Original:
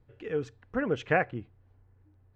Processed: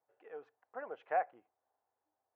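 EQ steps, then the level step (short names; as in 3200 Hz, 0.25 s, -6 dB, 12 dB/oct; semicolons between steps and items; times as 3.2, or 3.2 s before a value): ladder band-pass 840 Hz, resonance 55%; +1.0 dB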